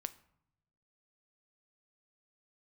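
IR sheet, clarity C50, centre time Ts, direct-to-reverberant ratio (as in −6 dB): 17.5 dB, 3 ms, 12.0 dB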